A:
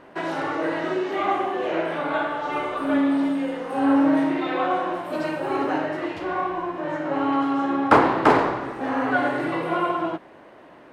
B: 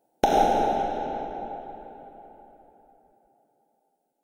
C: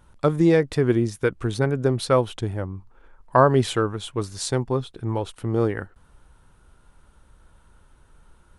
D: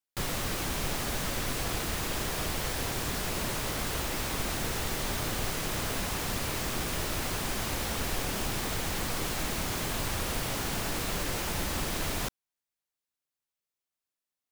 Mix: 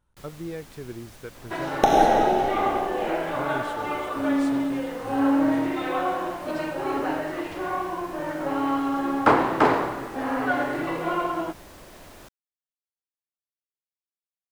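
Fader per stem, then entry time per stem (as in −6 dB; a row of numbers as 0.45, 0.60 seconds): −2.5, +2.5, −17.5, −16.5 decibels; 1.35, 1.60, 0.00, 0.00 seconds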